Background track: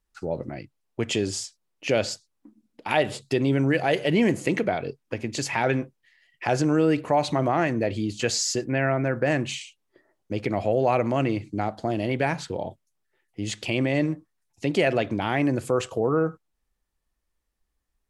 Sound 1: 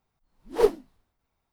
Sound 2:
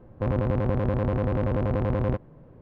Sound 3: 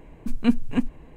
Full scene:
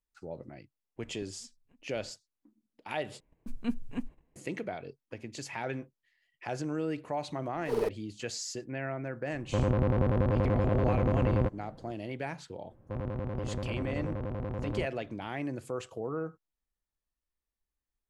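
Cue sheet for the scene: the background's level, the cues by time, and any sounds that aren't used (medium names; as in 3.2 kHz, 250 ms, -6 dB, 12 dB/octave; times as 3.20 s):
background track -12.5 dB
0.96 s: add 3 -11.5 dB, fades 0.05 s + inverted gate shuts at -21 dBFS, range -33 dB
3.20 s: replace with 3 -12.5 dB + gate -42 dBFS, range -13 dB
7.09 s: add 1 -13.5 dB + buffer glitch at 0.61 s, samples 2048, times 3
9.32 s: add 2 -2 dB
12.69 s: add 2 -10.5 dB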